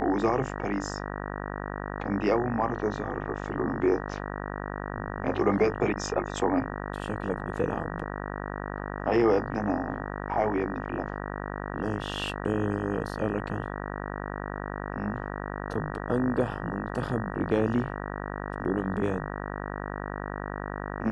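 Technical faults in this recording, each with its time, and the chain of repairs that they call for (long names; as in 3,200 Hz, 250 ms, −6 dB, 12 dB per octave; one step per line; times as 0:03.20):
mains buzz 50 Hz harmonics 38 −35 dBFS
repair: hum removal 50 Hz, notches 38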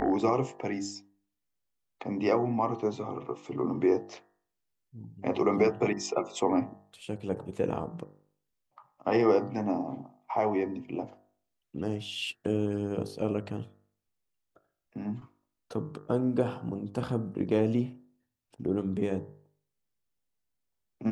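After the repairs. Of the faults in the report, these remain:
none of them is left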